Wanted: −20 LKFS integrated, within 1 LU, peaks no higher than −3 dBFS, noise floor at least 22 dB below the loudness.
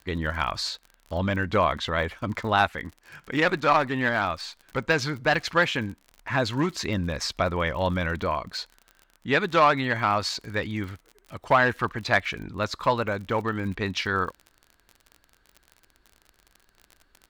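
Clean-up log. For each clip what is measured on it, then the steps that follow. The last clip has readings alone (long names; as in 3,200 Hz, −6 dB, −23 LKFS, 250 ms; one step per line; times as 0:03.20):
crackle rate 40 per second; integrated loudness −25.5 LKFS; sample peak −8.0 dBFS; target loudness −20.0 LKFS
→ click removal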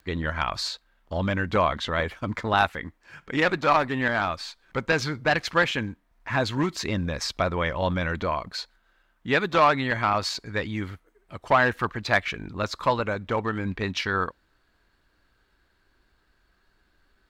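crackle rate 0.23 per second; integrated loudness −26.0 LKFS; sample peak −8.0 dBFS; target loudness −20.0 LKFS
→ level +6 dB
brickwall limiter −3 dBFS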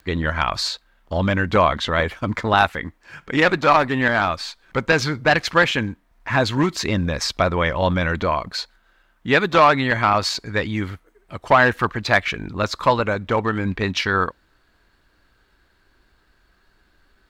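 integrated loudness −20.0 LKFS; sample peak −3.0 dBFS; background noise floor −62 dBFS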